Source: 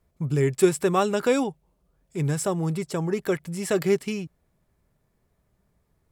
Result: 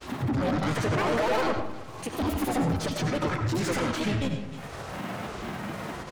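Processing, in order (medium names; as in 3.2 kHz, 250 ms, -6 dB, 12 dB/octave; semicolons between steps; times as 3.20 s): high-pass 74 Hz 12 dB/octave; peaking EQ 320 Hz -13 dB 0.43 oct; harmony voices -5 st -5 dB; bass shelf 220 Hz +5.5 dB; upward compressor, threshold -26 dBFS; peak limiter -22 dBFS, peak gain reduction 14 dB; granulator, pitch spread up and down by 12 st; harmonic-percussive split percussive -7 dB; overdrive pedal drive 38 dB, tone 2 kHz, clips at -10.5 dBFS; delay 311 ms -19 dB; reverberation RT60 0.55 s, pre-delay 50 ms, DRR 5 dB; tape noise reduction on one side only encoder only; trim -8 dB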